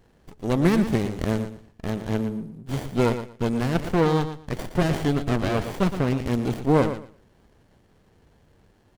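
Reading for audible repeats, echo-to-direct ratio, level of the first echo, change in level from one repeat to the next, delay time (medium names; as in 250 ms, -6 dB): 2, -10.5 dB, -10.5 dB, -14.5 dB, 117 ms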